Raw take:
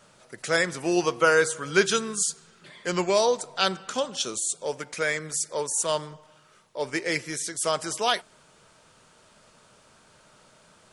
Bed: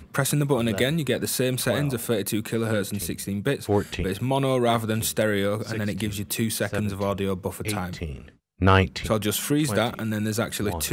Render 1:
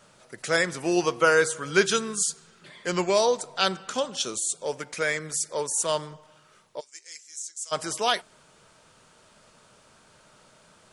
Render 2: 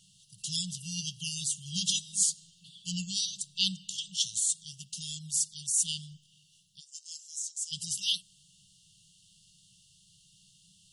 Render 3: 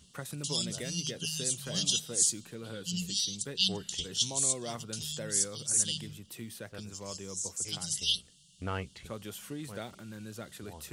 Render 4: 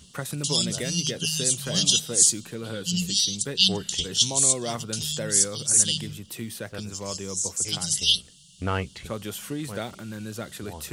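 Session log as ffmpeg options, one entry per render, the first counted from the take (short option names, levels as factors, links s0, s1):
-filter_complex "[0:a]asplit=3[s0][s1][s2];[s0]afade=t=out:st=6.79:d=0.02[s3];[s1]bandpass=f=7000:t=q:w=3.7,afade=t=in:st=6.79:d=0.02,afade=t=out:st=7.71:d=0.02[s4];[s2]afade=t=in:st=7.71:d=0.02[s5];[s3][s4][s5]amix=inputs=3:normalize=0"
-af "afftfilt=real='re*(1-between(b*sr/4096,200,2700))':imag='im*(1-between(b*sr/4096,200,2700))':win_size=4096:overlap=0.75,lowshelf=f=160:g=-6"
-filter_complex "[1:a]volume=0.126[s0];[0:a][s0]amix=inputs=2:normalize=0"
-af "volume=2.66"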